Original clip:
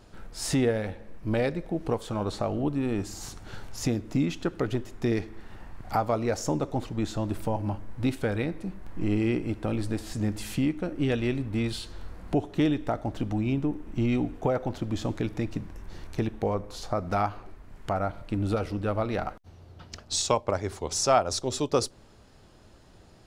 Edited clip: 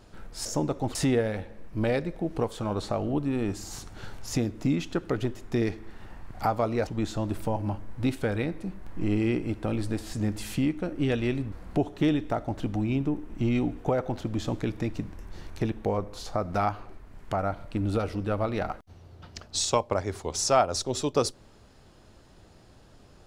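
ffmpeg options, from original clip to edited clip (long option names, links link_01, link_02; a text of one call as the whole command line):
ffmpeg -i in.wav -filter_complex "[0:a]asplit=5[link_01][link_02][link_03][link_04][link_05];[link_01]atrim=end=0.452[link_06];[link_02]atrim=start=6.368:end=6.872[link_07];[link_03]atrim=start=0.448:end=6.372[link_08];[link_04]atrim=start=6.868:end=11.522[link_09];[link_05]atrim=start=12.088[link_10];[link_06][link_07]acrossfade=duration=0.004:curve1=hsin:curve2=hsin[link_11];[link_11][link_08]acrossfade=duration=0.004:curve1=hsin:curve2=hsin[link_12];[link_12][link_09]acrossfade=duration=0.004:curve1=hsin:curve2=hsin[link_13];[link_13][link_10]acrossfade=duration=0.004:curve1=hsin:curve2=hsin" out.wav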